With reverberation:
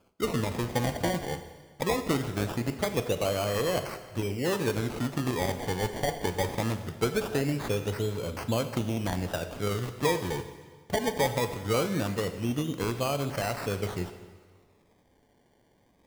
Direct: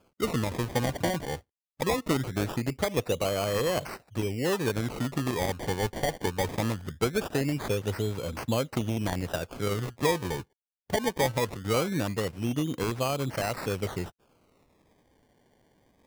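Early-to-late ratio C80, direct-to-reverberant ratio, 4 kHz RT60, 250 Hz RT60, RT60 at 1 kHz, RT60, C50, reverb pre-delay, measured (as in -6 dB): 11.5 dB, 8.0 dB, 1.4 s, 1.5 s, 1.5 s, 1.5 s, 10.5 dB, 6 ms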